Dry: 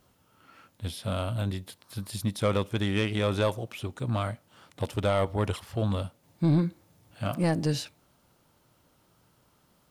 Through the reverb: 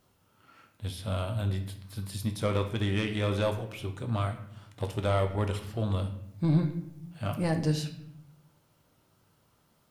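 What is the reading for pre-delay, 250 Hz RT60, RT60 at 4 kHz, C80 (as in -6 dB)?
5 ms, 1.1 s, 0.55 s, 13.0 dB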